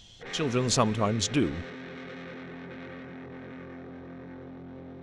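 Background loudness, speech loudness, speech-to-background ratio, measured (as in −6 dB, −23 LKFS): −42.0 LKFS, −27.5 LKFS, 14.5 dB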